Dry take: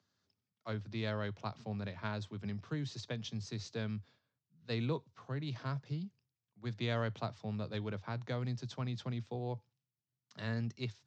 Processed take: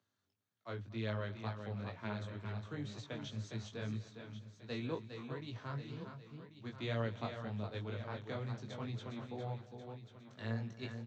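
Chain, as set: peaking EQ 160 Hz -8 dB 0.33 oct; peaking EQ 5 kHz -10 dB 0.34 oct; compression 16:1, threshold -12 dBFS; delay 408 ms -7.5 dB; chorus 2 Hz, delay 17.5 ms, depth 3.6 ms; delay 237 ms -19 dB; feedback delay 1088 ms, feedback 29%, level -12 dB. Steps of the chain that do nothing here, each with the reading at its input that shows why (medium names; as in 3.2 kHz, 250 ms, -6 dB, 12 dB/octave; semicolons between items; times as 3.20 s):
compression, threshold -12 dBFS: peak at its input -23.5 dBFS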